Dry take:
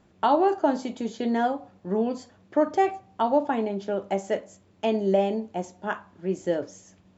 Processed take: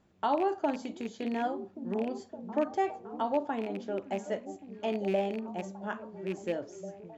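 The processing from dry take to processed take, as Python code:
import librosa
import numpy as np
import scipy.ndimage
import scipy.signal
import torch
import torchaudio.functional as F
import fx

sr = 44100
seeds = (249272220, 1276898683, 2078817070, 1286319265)

y = fx.rattle_buzz(x, sr, strikes_db=-30.0, level_db=-25.0)
y = fx.echo_stepped(y, sr, ms=564, hz=190.0, octaves=0.7, feedback_pct=70, wet_db=-7.5)
y = y * librosa.db_to_amplitude(-7.5)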